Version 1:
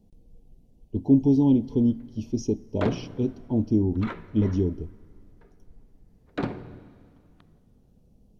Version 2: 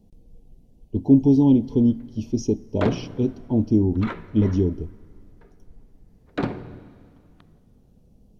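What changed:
speech +3.5 dB; background +3.5 dB

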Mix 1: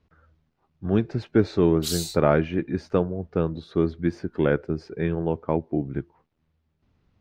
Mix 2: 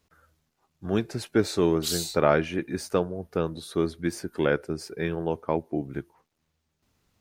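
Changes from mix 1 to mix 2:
speech: remove distance through air 210 m; master: add bass shelf 310 Hz -7.5 dB

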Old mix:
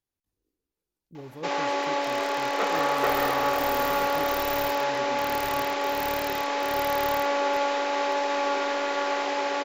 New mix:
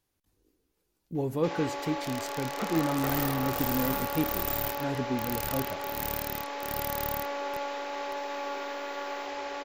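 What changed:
speech +11.5 dB; first sound -9.0 dB; second sound +4.0 dB

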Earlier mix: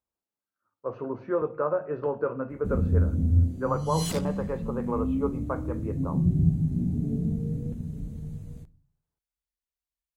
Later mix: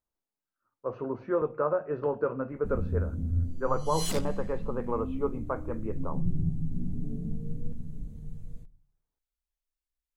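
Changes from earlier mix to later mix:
speech: send -6.5 dB; first sound -8.0 dB; master: remove high-pass 53 Hz

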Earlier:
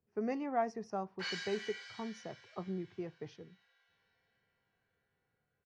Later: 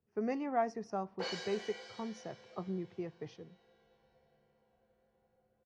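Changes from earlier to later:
background: remove resonant high-pass 1.6 kHz, resonance Q 1.7; reverb: on, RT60 1.4 s

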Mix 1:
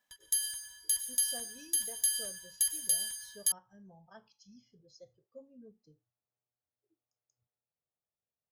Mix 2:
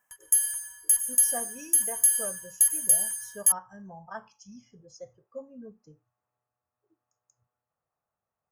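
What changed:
speech +9.5 dB; master: add FFT filter 240 Hz 0 dB, 390 Hz -2 dB, 1.1 kHz +10 dB, 2.8 kHz 0 dB, 4 kHz -18 dB, 5.6 kHz 0 dB, 8.1 kHz +9 dB

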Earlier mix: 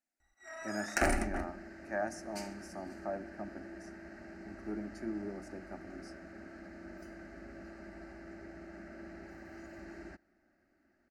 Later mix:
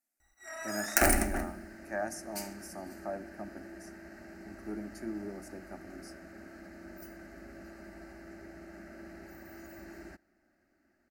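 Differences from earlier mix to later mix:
first sound: send on; master: remove distance through air 71 m

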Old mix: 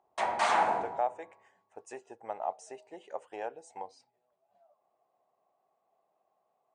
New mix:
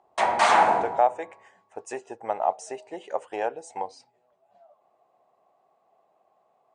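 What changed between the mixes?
speech +10.0 dB; background +8.0 dB

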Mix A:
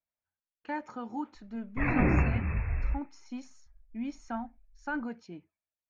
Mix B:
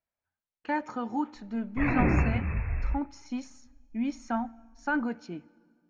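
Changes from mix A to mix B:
speech +4.5 dB; reverb: on, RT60 2.0 s

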